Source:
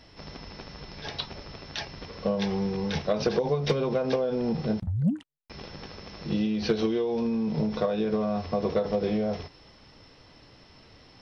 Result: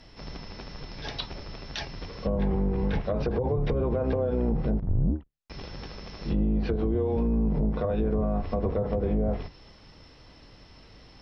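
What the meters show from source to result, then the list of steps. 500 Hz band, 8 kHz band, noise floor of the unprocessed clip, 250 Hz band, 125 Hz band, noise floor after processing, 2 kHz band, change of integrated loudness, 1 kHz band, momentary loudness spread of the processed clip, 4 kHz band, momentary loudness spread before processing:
-2.0 dB, no reading, -54 dBFS, -1.0 dB, +3.5 dB, -53 dBFS, -3.5 dB, 0.0 dB, -2.0 dB, 15 LU, -4.5 dB, 16 LU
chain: octave divider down 2 oct, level +3 dB; low-pass that closes with the level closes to 910 Hz, closed at -19 dBFS; peak limiter -18 dBFS, peak gain reduction 6.5 dB

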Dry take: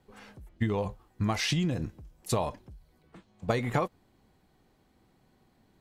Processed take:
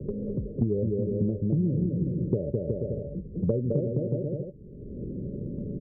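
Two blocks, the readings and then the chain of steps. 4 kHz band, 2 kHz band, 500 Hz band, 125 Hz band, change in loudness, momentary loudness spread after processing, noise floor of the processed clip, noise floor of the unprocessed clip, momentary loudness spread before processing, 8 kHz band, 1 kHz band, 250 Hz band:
under -40 dB, under -40 dB, +5.5 dB, +6.5 dB, +2.0 dB, 10 LU, -43 dBFS, -67 dBFS, 13 LU, under -35 dB, under -20 dB, +6.5 dB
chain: local Wiener filter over 41 samples; bouncing-ball echo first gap 210 ms, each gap 0.75×, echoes 5; dynamic bell 330 Hz, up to +5 dB, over -44 dBFS, Q 1.5; rippled Chebyshev low-pass 590 Hz, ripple 6 dB; three bands compressed up and down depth 100%; trim +5 dB

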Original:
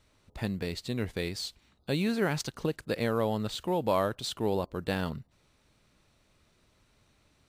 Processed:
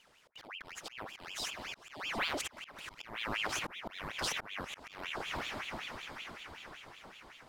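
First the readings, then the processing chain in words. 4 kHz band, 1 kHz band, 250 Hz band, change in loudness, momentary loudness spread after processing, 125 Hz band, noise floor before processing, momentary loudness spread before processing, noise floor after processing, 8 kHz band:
-0.5 dB, -5.5 dB, -16.5 dB, -8.0 dB, 14 LU, -18.5 dB, -68 dBFS, 9 LU, -65 dBFS, 0.0 dB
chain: echo that smears into a reverb 489 ms, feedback 61%, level -11.5 dB; compression 6:1, threshold -32 dBFS, peak gain reduction 9.5 dB; slow attack 354 ms; ring modulator with a swept carrier 1.7 kHz, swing 75%, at 5.3 Hz; trim +4 dB

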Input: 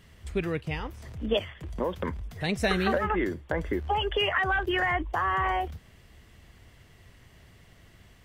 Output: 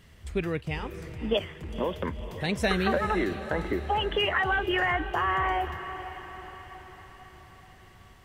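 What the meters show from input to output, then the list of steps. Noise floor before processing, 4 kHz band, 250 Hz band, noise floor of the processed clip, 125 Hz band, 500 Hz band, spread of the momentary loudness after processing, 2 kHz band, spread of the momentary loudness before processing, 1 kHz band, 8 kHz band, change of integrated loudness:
-56 dBFS, +0.5 dB, +0.5 dB, -53 dBFS, 0.0 dB, +0.5 dB, 17 LU, +0.5 dB, 10 LU, +0.5 dB, +0.5 dB, 0.0 dB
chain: echo that smears into a reverb 504 ms, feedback 55%, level -12 dB

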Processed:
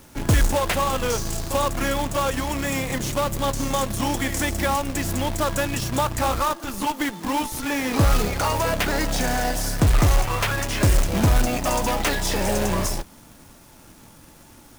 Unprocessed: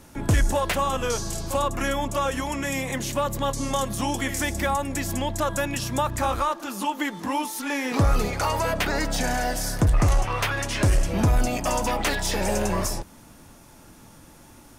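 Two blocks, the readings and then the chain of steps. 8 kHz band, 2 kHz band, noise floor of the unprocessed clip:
+2.5 dB, +1.5 dB, -49 dBFS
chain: in parallel at -9.5 dB: Schmitt trigger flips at -24.5 dBFS; on the sum: companded quantiser 4-bit

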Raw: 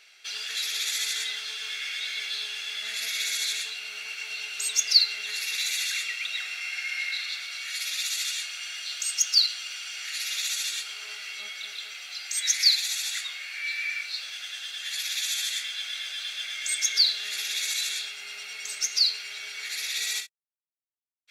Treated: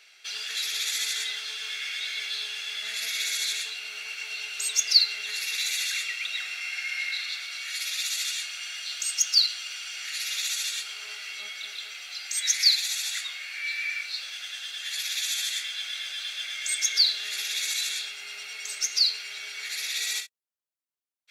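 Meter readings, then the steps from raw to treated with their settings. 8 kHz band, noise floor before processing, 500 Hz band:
0.0 dB, -56 dBFS, no reading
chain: high-pass 180 Hz

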